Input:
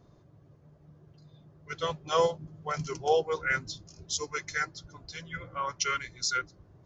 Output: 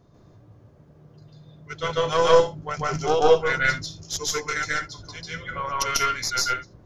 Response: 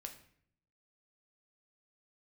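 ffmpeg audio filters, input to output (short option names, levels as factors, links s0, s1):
-filter_complex "[0:a]aeval=exprs='0.224*(cos(1*acos(clip(val(0)/0.224,-1,1)))-cos(1*PI/2))+0.0891*(cos(2*acos(clip(val(0)/0.224,-1,1)))-cos(2*PI/2))':c=same,asplit=2[s0][s1];[1:a]atrim=start_sample=2205,atrim=end_sample=3969,adelay=144[s2];[s1][s2]afir=irnorm=-1:irlink=0,volume=2.51[s3];[s0][s3]amix=inputs=2:normalize=0,volume=1.26"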